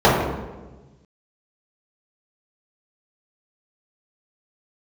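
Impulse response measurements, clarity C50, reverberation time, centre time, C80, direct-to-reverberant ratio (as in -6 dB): 1.5 dB, 1.2 s, 67 ms, 4.0 dB, -11.0 dB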